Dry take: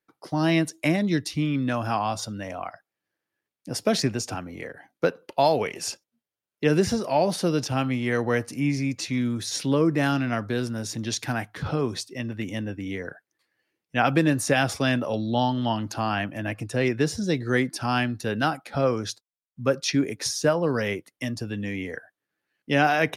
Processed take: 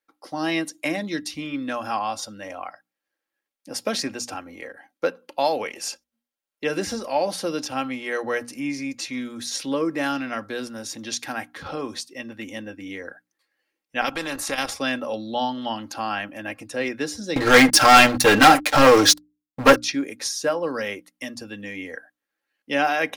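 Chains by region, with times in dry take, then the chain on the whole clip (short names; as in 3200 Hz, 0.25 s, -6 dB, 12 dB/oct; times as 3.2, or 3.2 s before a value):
14.01–14.71 tilt -2 dB/oct + level quantiser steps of 10 dB + spectral compressor 2:1
17.36–19.76 comb 6.6 ms, depth 75% + sample leveller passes 5
whole clip: bell 120 Hz -12 dB 2.1 oct; notches 60/120/180/240/300 Hz; comb 3.7 ms, depth 42%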